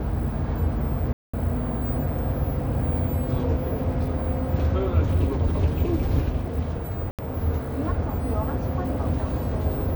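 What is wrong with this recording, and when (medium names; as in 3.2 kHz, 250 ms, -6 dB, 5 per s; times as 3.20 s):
1.13–1.33 s: dropout 205 ms
7.11–7.19 s: dropout 77 ms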